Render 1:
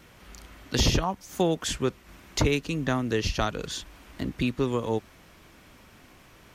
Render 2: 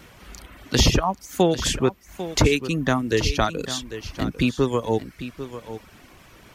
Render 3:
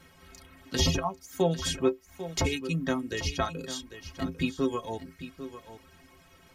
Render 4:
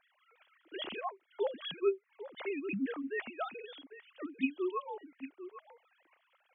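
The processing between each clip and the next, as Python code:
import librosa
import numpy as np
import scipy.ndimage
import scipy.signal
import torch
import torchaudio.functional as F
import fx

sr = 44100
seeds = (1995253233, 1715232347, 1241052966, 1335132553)

y1 = fx.dereverb_blind(x, sr, rt60_s=0.7)
y1 = y1 + 10.0 ** (-12.5 / 20.0) * np.pad(y1, (int(797 * sr / 1000.0), 0))[:len(y1)]
y1 = F.gain(torch.from_numpy(y1), 6.0).numpy()
y2 = fx.stiff_resonator(y1, sr, f0_hz=79.0, decay_s=0.26, stiffness=0.03)
y3 = fx.sine_speech(y2, sr)
y3 = F.gain(torch.from_numpy(y3), -7.5).numpy()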